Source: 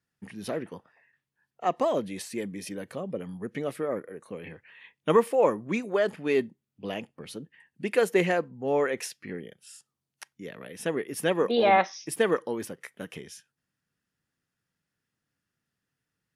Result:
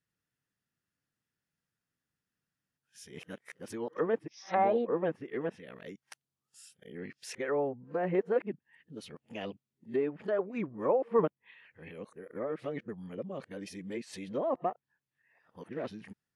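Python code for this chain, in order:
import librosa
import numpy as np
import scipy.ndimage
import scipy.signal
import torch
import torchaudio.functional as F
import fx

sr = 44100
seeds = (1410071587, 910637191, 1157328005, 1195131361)

y = x[::-1].copy()
y = fx.env_lowpass_down(y, sr, base_hz=1200.0, full_db=-23.0)
y = y * 10.0 ** (-5.5 / 20.0)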